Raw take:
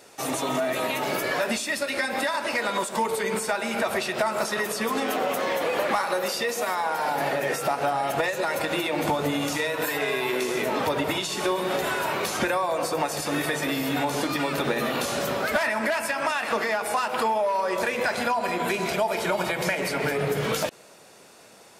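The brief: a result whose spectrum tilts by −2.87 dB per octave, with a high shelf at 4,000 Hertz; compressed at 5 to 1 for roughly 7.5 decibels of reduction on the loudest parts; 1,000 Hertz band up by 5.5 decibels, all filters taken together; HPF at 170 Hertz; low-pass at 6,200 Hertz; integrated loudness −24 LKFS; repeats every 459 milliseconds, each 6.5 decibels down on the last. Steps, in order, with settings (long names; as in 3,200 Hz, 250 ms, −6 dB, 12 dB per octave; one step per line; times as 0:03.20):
high-pass filter 170 Hz
low-pass filter 6,200 Hz
parametric band 1,000 Hz +6.5 dB
high-shelf EQ 4,000 Hz +4.5 dB
downward compressor 5 to 1, threshold −24 dBFS
repeating echo 459 ms, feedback 47%, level −6.5 dB
level +2.5 dB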